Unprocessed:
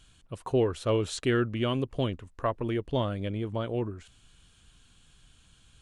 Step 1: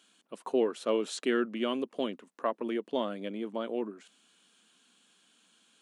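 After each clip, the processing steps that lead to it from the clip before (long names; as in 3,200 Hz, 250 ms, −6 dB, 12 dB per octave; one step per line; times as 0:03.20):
elliptic high-pass filter 210 Hz, stop band 60 dB
level −1.5 dB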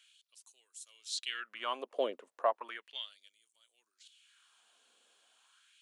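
auto-filter high-pass sine 0.35 Hz 500–7,600 Hz
level −3.5 dB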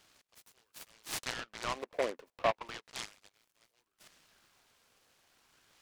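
short delay modulated by noise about 1,300 Hz, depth 0.088 ms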